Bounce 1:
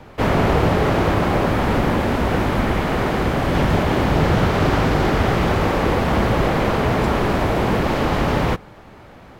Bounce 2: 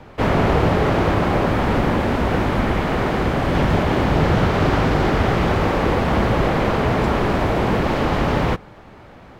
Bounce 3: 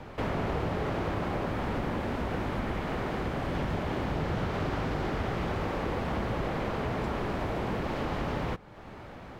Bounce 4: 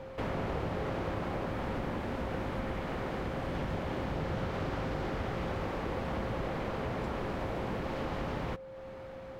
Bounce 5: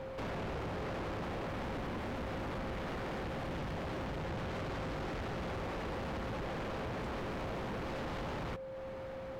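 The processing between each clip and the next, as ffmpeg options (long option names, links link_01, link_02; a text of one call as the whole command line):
ffmpeg -i in.wav -af "highshelf=frequency=8000:gain=-7.5" out.wav
ffmpeg -i in.wav -af "acompressor=threshold=-36dB:ratio=2,volume=-2dB" out.wav
ffmpeg -i in.wav -af "aeval=exprs='val(0)+0.01*sin(2*PI*530*n/s)':channel_layout=same,volume=-4dB" out.wav
ffmpeg -i in.wav -af "asoftclip=type=tanh:threshold=-39.5dB,volume=3dB" out.wav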